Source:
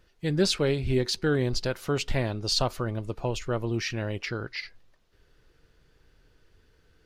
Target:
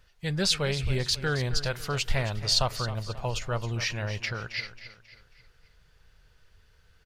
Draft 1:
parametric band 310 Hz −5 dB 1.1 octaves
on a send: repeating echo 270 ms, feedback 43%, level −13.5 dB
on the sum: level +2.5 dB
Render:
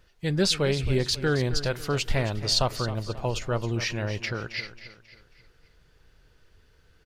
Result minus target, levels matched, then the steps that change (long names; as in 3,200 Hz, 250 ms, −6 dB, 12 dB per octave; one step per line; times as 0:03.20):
250 Hz band +4.0 dB
change: parametric band 310 Hz −15.5 dB 1.1 octaves